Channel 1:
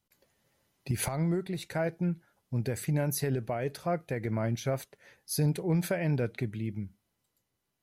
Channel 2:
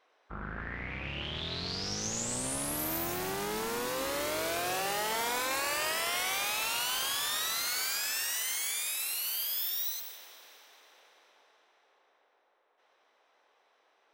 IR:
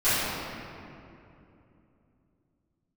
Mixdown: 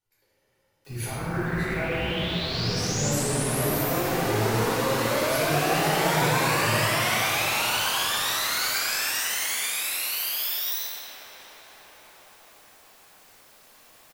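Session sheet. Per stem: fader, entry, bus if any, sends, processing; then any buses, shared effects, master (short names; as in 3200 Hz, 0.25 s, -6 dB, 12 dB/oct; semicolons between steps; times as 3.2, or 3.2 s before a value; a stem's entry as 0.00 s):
-11.5 dB, 0.00 s, send -3.5 dB, comb 2.2 ms, depth 40%
-2.5 dB, 0.85 s, send -6.5 dB, requantised 10-bit, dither triangular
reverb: on, RT60 2.8 s, pre-delay 3 ms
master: low shelf 240 Hz -3.5 dB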